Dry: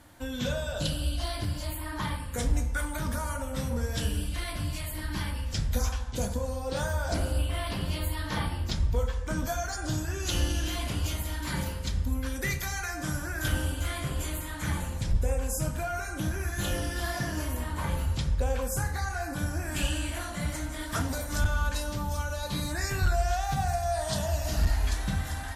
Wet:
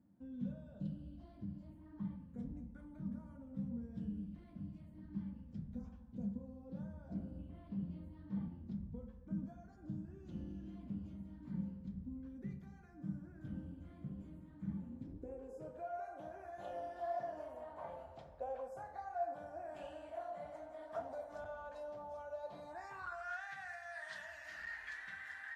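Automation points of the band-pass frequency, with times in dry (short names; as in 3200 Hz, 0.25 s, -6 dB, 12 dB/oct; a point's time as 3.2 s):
band-pass, Q 6.4
14.74 s 200 Hz
16.06 s 670 Hz
22.62 s 670 Hz
23.5 s 1800 Hz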